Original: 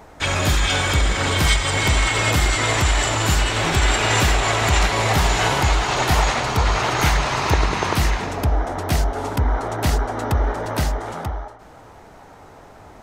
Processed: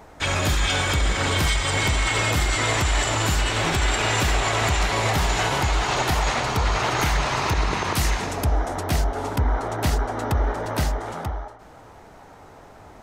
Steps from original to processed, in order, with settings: 7.95–8.81 bell 10000 Hz +7.5 dB 1.8 oct; limiter -10 dBFS, peak gain reduction 7.5 dB; gain -2 dB

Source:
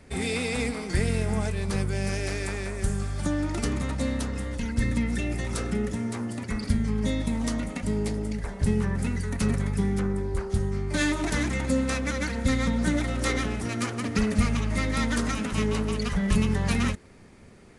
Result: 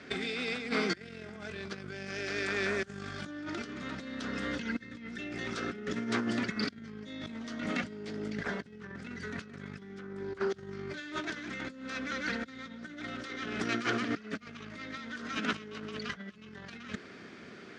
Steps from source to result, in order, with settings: negative-ratio compressor -32 dBFS, ratio -0.5; speaker cabinet 240–5600 Hz, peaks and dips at 530 Hz -5 dB, 880 Hz -9 dB, 1500 Hz +7 dB, 3300 Hz +4 dB

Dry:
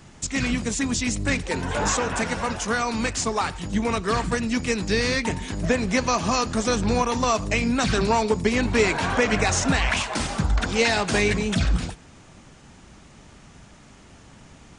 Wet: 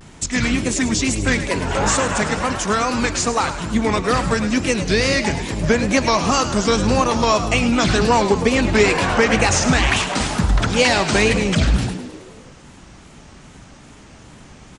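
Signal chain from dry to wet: wow and flutter 140 cents; frequency-shifting echo 0.105 s, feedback 59%, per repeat +64 Hz, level -11.5 dB; gain +5 dB

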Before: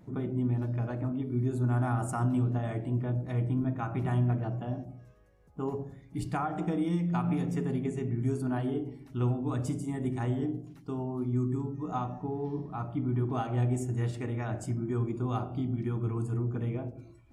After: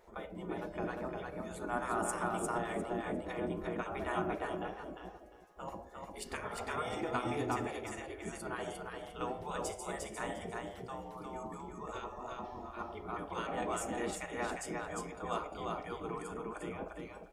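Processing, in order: feedback echo 0.352 s, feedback 19%, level -3.5 dB; spectral gate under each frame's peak -15 dB weak; gain +3 dB

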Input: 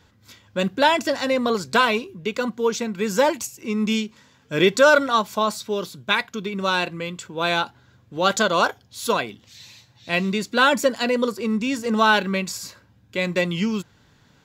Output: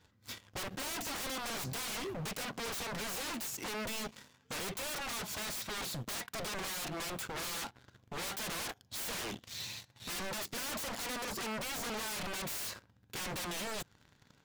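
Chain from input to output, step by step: compressor 3:1, threshold -25 dBFS, peak gain reduction 11.5 dB; sample leveller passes 3; wavefolder -28 dBFS; gain -6 dB

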